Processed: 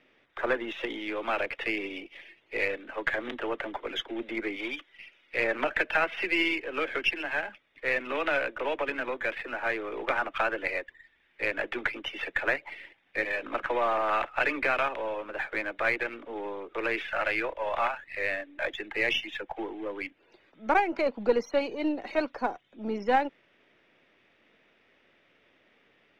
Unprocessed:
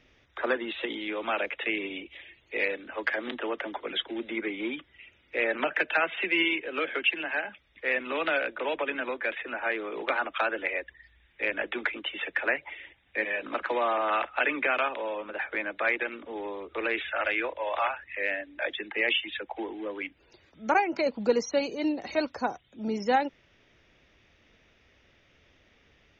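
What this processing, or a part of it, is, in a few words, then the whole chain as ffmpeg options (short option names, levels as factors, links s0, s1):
crystal radio: -filter_complex "[0:a]asettb=1/sr,asplit=3[s0][s1][s2];[s0]atrim=end=4.564[s3];[s1]atrim=start=4.56:end=5.4,asetpts=PTS-STARTPTS,afade=t=in:d=0.004:c=qsin,afade=t=out:st=0.836:d=0.004:c=qsin,aemphasis=mode=production:type=riaa[s4];[s2]atrim=start=5.396[s5];[s3][s4]acrossfade=d=0.004:c1=hsin:c2=qsin[s6];[s6][s5]acrossfade=d=0.004:c1=qsin:c2=hsin,highpass=220,lowpass=3100,aeval=exprs='if(lt(val(0),0),0.708*val(0),val(0))':c=same,volume=1.19"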